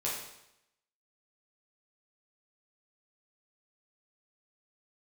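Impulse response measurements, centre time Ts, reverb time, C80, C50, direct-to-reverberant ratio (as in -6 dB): 52 ms, 0.85 s, 5.5 dB, 2.0 dB, -6.5 dB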